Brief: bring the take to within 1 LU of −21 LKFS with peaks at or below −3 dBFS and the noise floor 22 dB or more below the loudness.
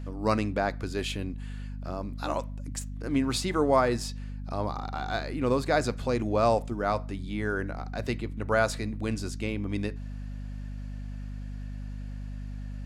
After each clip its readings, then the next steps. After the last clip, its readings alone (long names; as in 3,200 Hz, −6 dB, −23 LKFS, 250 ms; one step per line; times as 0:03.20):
mains hum 50 Hz; hum harmonics up to 250 Hz; level of the hum −34 dBFS; integrated loudness −30.5 LKFS; sample peak −10.5 dBFS; target loudness −21.0 LKFS
→ hum removal 50 Hz, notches 5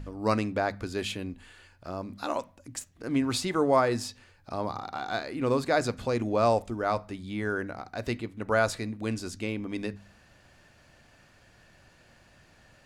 mains hum none found; integrated loudness −30.0 LKFS; sample peak −10.5 dBFS; target loudness −21.0 LKFS
→ level +9 dB
brickwall limiter −3 dBFS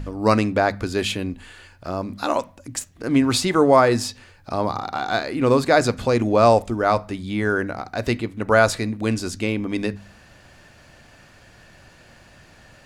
integrated loudness −21.0 LKFS; sample peak −3.0 dBFS; background noise floor −51 dBFS